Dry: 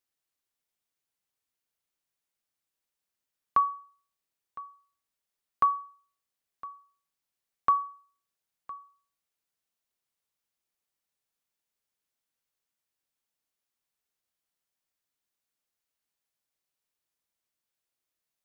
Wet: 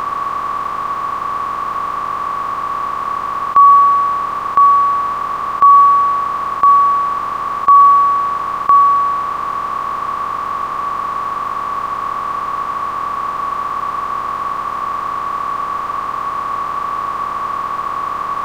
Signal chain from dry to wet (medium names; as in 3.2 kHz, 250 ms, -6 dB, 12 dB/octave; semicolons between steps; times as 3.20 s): spectral levelling over time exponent 0.2; loudness maximiser +18 dB; trim -1 dB